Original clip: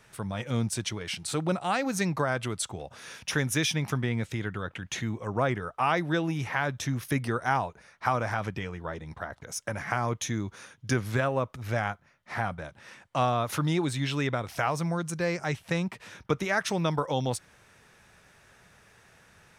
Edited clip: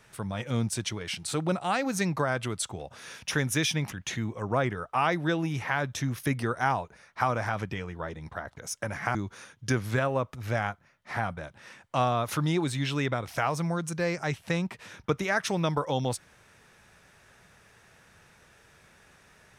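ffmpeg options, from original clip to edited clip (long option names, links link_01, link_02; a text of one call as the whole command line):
ffmpeg -i in.wav -filter_complex "[0:a]asplit=3[link_01][link_02][link_03];[link_01]atrim=end=3.922[link_04];[link_02]atrim=start=4.768:end=10.002[link_05];[link_03]atrim=start=10.358[link_06];[link_04][link_05]acrossfade=duration=0.004:curve1=hsin:curve2=hsin[link_07];[link_07][link_06]acrossfade=duration=0.004:curve1=hsin:curve2=hsin" out.wav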